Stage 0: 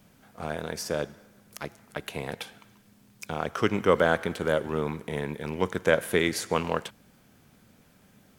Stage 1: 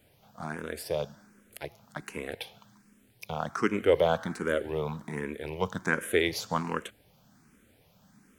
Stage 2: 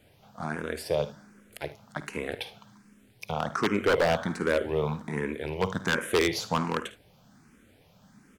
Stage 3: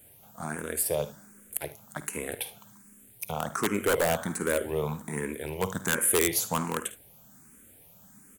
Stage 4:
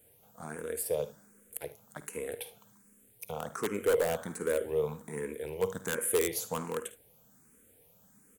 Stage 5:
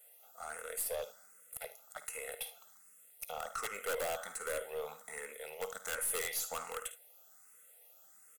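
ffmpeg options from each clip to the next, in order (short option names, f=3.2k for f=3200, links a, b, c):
-filter_complex "[0:a]asplit=2[a][b];[b]afreqshift=1.3[c];[a][c]amix=inputs=2:normalize=1"
-af "highshelf=f=11k:g=-10.5,aecho=1:1:53|74:0.178|0.141,aeval=exprs='0.106*(abs(mod(val(0)/0.106+3,4)-2)-1)':c=same,volume=3.5dB"
-af "aexciter=amount=10.7:drive=3.6:freq=7.2k,volume=-2dB"
-af "equalizer=f=470:t=o:w=0.33:g=11,volume=-8dB"
-af "highpass=850,aecho=1:1:1.5:0.74,aeval=exprs='(tanh(44.7*val(0)+0.2)-tanh(0.2))/44.7':c=same,volume=1.5dB"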